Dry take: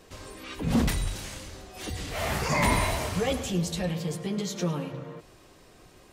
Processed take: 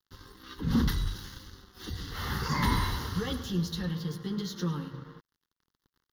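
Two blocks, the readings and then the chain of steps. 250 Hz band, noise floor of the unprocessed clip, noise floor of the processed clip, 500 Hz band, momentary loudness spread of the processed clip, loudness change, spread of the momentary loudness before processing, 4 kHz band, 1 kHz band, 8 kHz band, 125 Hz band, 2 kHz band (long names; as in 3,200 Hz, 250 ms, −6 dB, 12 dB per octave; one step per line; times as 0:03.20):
−2.0 dB, −55 dBFS, below −85 dBFS, −9.5 dB, 18 LU, −3.0 dB, 17 LU, −2.5 dB, −4.5 dB, −10.0 dB, −1.5 dB, −6.0 dB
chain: dead-zone distortion −46.5 dBFS
phaser with its sweep stopped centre 2,400 Hz, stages 6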